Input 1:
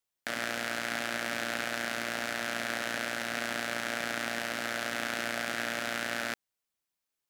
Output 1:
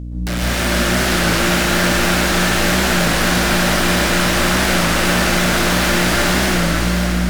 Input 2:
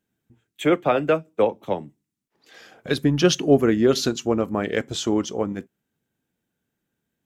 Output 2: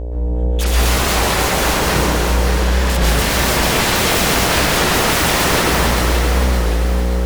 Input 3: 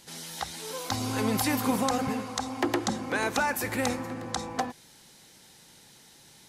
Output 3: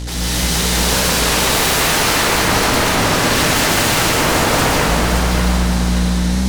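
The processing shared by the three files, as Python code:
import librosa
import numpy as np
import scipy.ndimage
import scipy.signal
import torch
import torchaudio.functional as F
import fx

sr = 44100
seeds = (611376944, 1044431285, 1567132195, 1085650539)

p1 = scipy.signal.sosfilt(scipy.signal.butter(2, 9200.0, 'lowpass', fs=sr, output='sos'), x)
p2 = fx.low_shelf(p1, sr, hz=77.0, db=12.0)
p3 = fx.hum_notches(p2, sr, base_hz=60, count=9)
p4 = fx.rider(p3, sr, range_db=3, speed_s=0.5)
p5 = p3 + (p4 * 10.0 ** (2.0 / 20.0))
p6 = np.clip(p5, -10.0 ** (-11.5 / 20.0), 10.0 ** (-11.5 / 20.0))
p7 = fx.add_hum(p6, sr, base_hz=60, snr_db=10)
p8 = fx.fold_sine(p7, sr, drive_db=19, ceiling_db=-10.0)
p9 = p8 + fx.echo_feedback(p8, sr, ms=572, feedback_pct=45, wet_db=-6.0, dry=0)
p10 = fx.rev_plate(p9, sr, seeds[0], rt60_s=3.2, hf_ratio=0.85, predelay_ms=110, drr_db=-7.5)
p11 = fx.record_warp(p10, sr, rpm=33.33, depth_cents=100.0)
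y = p11 * 10.0 ** (-11.0 / 20.0)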